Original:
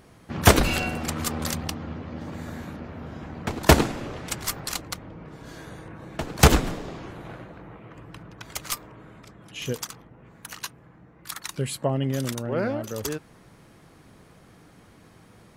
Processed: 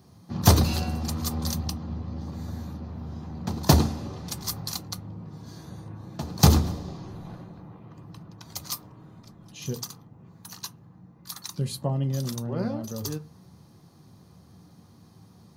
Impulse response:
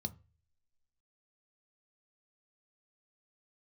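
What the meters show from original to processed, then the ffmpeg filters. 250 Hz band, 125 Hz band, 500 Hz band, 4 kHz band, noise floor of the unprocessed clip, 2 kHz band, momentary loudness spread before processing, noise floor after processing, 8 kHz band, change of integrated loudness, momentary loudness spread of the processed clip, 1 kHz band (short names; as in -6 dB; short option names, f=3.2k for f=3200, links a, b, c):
-1.0 dB, +2.0 dB, -6.5 dB, -2.0 dB, -53 dBFS, -12.0 dB, 23 LU, -54 dBFS, -2.5 dB, -1.5 dB, 22 LU, -5.0 dB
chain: -filter_complex "[0:a]aemphasis=mode=production:type=bsi,bandreject=f=2.2k:w=17,asplit=2[a][b];[1:a]atrim=start_sample=2205,lowshelf=f=110:g=10.5,highshelf=f=6.6k:g=-6.5[c];[b][c]afir=irnorm=-1:irlink=0,volume=9dB[d];[a][d]amix=inputs=2:normalize=0,volume=-13dB"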